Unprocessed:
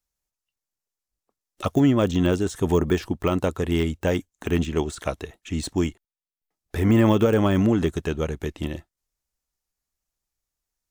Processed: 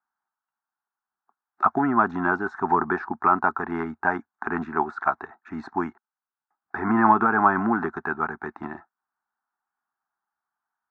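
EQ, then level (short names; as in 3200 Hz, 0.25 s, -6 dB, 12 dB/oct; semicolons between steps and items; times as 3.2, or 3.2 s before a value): speaker cabinet 220–3600 Hz, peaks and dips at 230 Hz +7 dB, 390 Hz +9 dB, 820 Hz +6 dB, 1500 Hz +4 dB; band shelf 1000 Hz +15 dB; fixed phaser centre 1300 Hz, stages 4; -4.5 dB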